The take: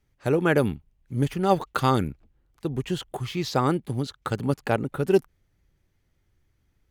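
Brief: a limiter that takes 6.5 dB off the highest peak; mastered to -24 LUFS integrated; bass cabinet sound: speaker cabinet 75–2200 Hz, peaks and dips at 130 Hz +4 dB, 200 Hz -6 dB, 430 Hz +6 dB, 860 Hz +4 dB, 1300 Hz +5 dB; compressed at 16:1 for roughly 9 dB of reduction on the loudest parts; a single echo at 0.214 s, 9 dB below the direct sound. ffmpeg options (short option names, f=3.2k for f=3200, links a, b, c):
-af "acompressor=threshold=-22dB:ratio=16,alimiter=limit=-18dB:level=0:latency=1,highpass=f=75:w=0.5412,highpass=f=75:w=1.3066,equalizer=f=130:t=q:w=4:g=4,equalizer=f=200:t=q:w=4:g=-6,equalizer=f=430:t=q:w=4:g=6,equalizer=f=860:t=q:w=4:g=4,equalizer=f=1.3k:t=q:w=4:g=5,lowpass=f=2.2k:w=0.5412,lowpass=f=2.2k:w=1.3066,aecho=1:1:214:0.355,volume=5dB"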